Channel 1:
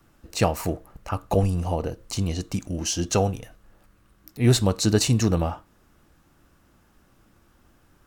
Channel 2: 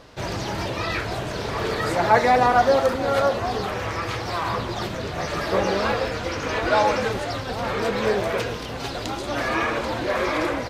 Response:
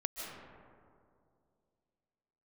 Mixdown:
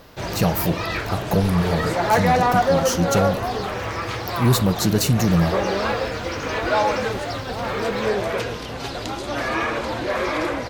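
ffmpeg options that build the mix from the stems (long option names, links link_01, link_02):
-filter_complex "[0:a]equalizer=frequency=170:width=3.8:gain=11.5,aexciter=amount=4:drive=6.7:freq=11000,volume=1dB[link_01];[1:a]volume=0.5dB[link_02];[link_01][link_02]amix=inputs=2:normalize=0,asoftclip=type=tanh:threshold=-8.5dB"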